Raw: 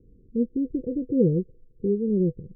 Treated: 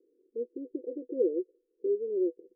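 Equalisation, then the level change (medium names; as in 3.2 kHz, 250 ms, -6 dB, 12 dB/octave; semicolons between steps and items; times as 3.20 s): elliptic high-pass 340 Hz, stop band 50 dB; Bessel low-pass 500 Hz; 0.0 dB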